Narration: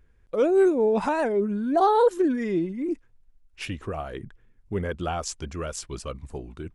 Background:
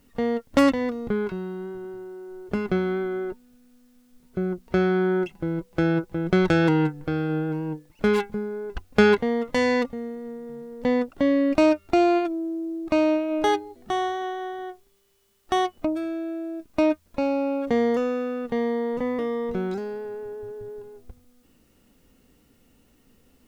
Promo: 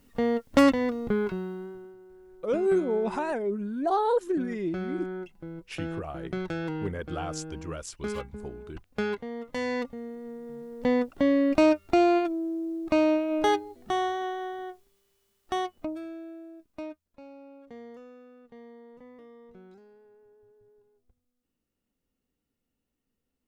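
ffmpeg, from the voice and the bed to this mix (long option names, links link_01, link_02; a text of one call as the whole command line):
ffmpeg -i stem1.wav -i stem2.wav -filter_complex "[0:a]adelay=2100,volume=-5.5dB[link_01];[1:a]volume=10dB,afade=type=out:start_time=1.33:duration=0.63:silence=0.251189,afade=type=in:start_time=9.29:duration=1.49:silence=0.281838,afade=type=out:start_time=14.24:duration=2.83:silence=0.0841395[link_02];[link_01][link_02]amix=inputs=2:normalize=0" out.wav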